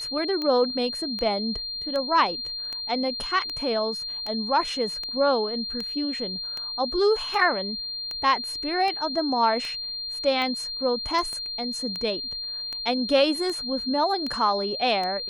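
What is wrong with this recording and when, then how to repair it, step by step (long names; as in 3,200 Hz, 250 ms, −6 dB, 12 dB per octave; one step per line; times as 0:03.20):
scratch tick 78 rpm −18 dBFS
whistle 4,200 Hz −30 dBFS
0:11.33: click −24 dBFS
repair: click removal
notch filter 4,200 Hz, Q 30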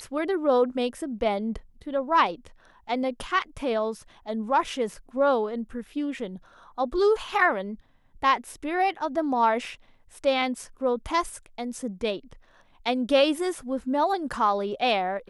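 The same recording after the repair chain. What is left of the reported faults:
0:11.33: click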